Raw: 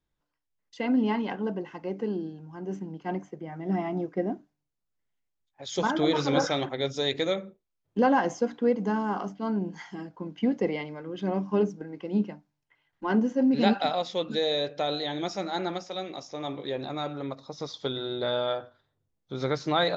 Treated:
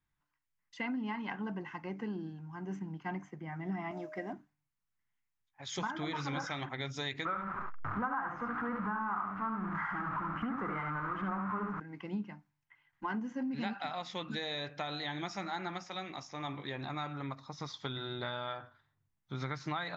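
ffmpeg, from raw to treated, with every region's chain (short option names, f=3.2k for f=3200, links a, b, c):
-filter_complex "[0:a]asettb=1/sr,asplit=3[a][b][c];[a]atrim=end=3.914[d];[b]atrim=start=3.91:end=4.33,asetpts=PTS-STARTPTS,afade=t=in:d=0.004:c=qsin,afade=t=out:st=0.416:d=0.004:c=qsin,acompressor=mode=upward:threshold=-38dB:ratio=2.5:attack=3.2:release=140:knee=2.83:detection=peak,aeval=exprs='val(0)+0.0158*sin(2*PI*620*n/s)':c=same,bass=f=250:g=-14,treble=f=4k:g=9[e];[c]atrim=start=4.326[f];[d][e]acrossfade=d=0.004:c1=hsin:c2=qsin[g];[g][f]acrossfade=d=0.004:c1=qsin:c2=hsin,asettb=1/sr,asplit=3[h][i][j];[h]atrim=end=7.254[k];[i]atrim=start=7.25:end=11.8,asetpts=PTS-STARTPTS,afade=t=in:d=0.004:c=qsin,afade=t=out:st=4.546:d=0.004:c=qsin,aeval=exprs='val(0)+0.5*0.0355*sgn(val(0))':c=same,lowpass=f=1.3k:t=q:w=6.3,aecho=1:1:72:0.596,atrim=end_sample=200655[l];[j]atrim=start=11.796[m];[k][l]acrossfade=d=0.004:c1=hsin:c2=qsin[n];[n][m]acrossfade=d=0.004:c1=qsin:c2=hsin,equalizer=f=125:t=o:w=1:g=5,equalizer=f=500:t=o:w=1:g=-11,equalizer=f=1k:t=o:w=1:g=6,equalizer=f=2k:t=o:w=1:g=7,equalizer=f=4k:t=o:w=1:g=-3,acompressor=threshold=-30dB:ratio=6,volume=-4dB"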